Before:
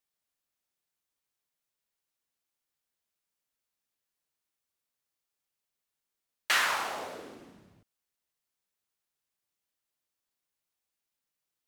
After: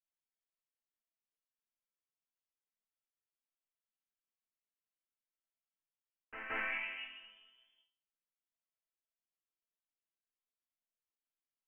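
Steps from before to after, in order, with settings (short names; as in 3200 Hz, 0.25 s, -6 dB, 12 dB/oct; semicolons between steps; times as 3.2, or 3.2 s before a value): inverted band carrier 3300 Hz; dynamic EQ 2500 Hz, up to +6 dB, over -42 dBFS, Q 0.88; short-mantissa float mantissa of 6-bit; resonator bank A3 minor, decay 0.42 s; on a send: reverse echo 0.172 s -8 dB; on the sum: gain +5 dB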